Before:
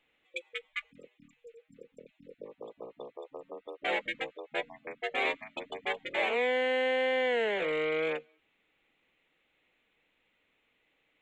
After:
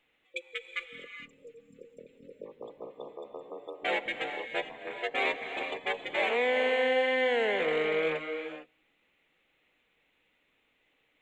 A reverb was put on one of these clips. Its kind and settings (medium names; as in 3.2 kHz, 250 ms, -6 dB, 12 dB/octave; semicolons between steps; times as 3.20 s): gated-style reverb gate 480 ms rising, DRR 6.5 dB; trim +1 dB